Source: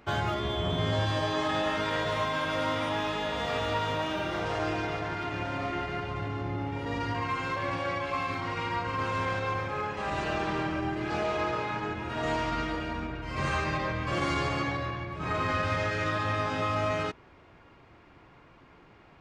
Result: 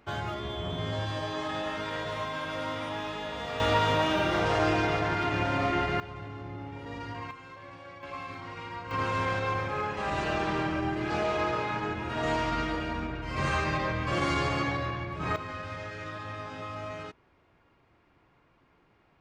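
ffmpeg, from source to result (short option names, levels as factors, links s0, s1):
-af "asetnsamples=n=441:p=0,asendcmd='3.6 volume volume 5dB;6 volume volume -7dB;7.31 volume volume -15dB;8.03 volume volume -8dB;8.91 volume volume 1dB;15.36 volume volume -9.5dB',volume=0.596"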